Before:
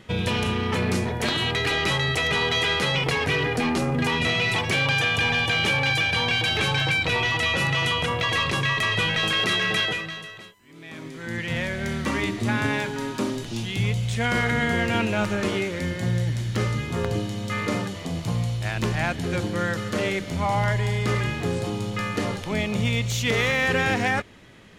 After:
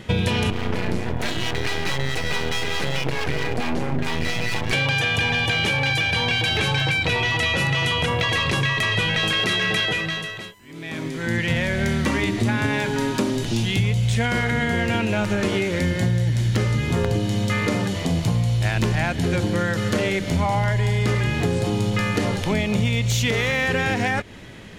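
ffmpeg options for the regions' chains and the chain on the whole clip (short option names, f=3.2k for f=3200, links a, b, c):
-filter_complex "[0:a]asettb=1/sr,asplit=3[a][b][c];[a]atrim=end=0.504[d];[b]atrim=start=0.5:end=4.73,asetpts=PTS-STARTPTS,afade=t=in:d=0.004:c=qsin,afade=t=out:st=4.226:d=0.004:c=qsin,highshelf=f=4.3k:g=-8.5,acrossover=split=550[e][f];[e]aeval=exprs='val(0)*(1-0.5/2+0.5/2*cos(2*PI*4.6*n/s))':c=same[g];[f]aeval=exprs='val(0)*(1-0.5/2-0.5/2*cos(2*PI*4.6*n/s))':c=same[h];[g][h]amix=inputs=2:normalize=0,aeval=exprs='max(val(0),0)':c=same[i];[c]atrim=start=4.726[j];[d][i]acrossfade=d=0.004:c1=hsin:c2=qsin[k];[k][j]acrossfade=d=0.004:c1=qsin:c2=hsin,equalizer=f=1.2k:t=o:w=0.23:g=-4.5,acompressor=threshold=-27dB:ratio=6,lowshelf=f=150:g=3.5,volume=8dB"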